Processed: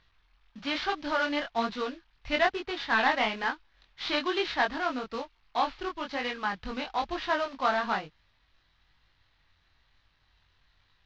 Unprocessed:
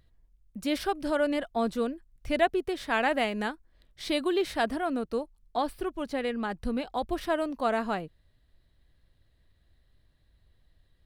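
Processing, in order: CVSD 32 kbps; band shelf 1900 Hz +10.5 dB 2.8 oct; chorus 1.1 Hz, delay 19.5 ms, depth 4.4 ms; gain -2 dB

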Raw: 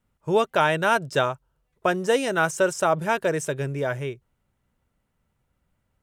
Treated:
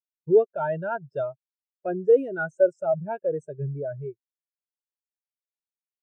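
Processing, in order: dynamic EQ 1100 Hz, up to -5 dB, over -35 dBFS, Q 2.3; sample leveller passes 2; spectral expander 2.5:1

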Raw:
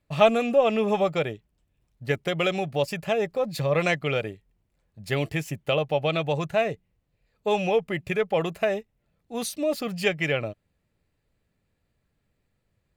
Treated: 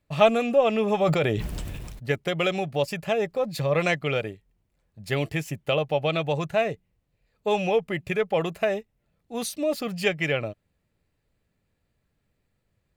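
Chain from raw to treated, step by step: 1.01–2.11 sustainer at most 24 dB/s

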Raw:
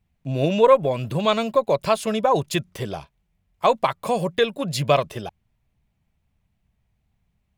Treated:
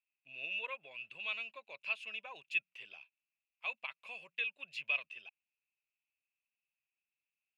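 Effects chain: band-pass 2600 Hz, Q 15; gain +1 dB

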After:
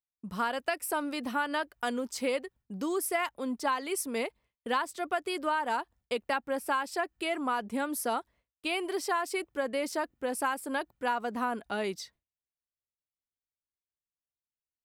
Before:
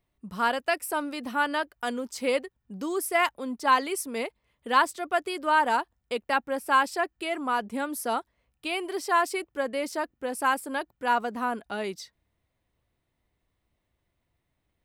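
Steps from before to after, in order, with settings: expander -50 dBFS; compressor 10:1, threshold -26 dBFS, peak gain reduction 11 dB

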